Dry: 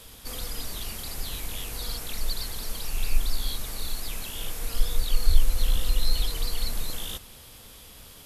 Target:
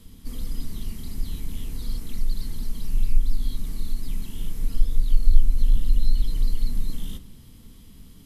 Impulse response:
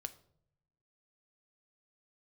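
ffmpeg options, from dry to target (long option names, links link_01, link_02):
-filter_complex "[0:a]lowshelf=frequency=420:width_type=q:width=1.5:gain=13,asplit=2[link_01][link_02];[link_02]acompressor=threshold=-12dB:ratio=6,volume=-0.5dB[link_03];[link_01][link_03]amix=inputs=2:normalize=0[link_04];[1:a]atrim=start_sample=2205,asetrate=61740,aresample=44100[link_05];[link_04][link_05]afir=irnorm=-1:irlink=0,volume=-9.5dB"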